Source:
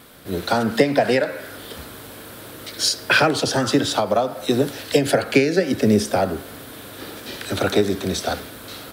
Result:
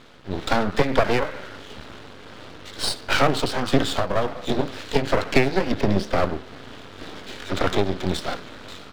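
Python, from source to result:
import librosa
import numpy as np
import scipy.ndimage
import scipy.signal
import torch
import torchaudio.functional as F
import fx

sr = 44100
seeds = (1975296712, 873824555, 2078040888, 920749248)

y = fx.pitch_ramps(x, sr, semitones=-1.5, every_ms=251)
y = scipy.signal.sosfilt(scipy.signal.butter(4, 4600.0, 'lowpass', fs=sr, output='sos'), y)
y = np.maximum(y, 0.0)
y = y * librosa.db_to_amplitude(3.0)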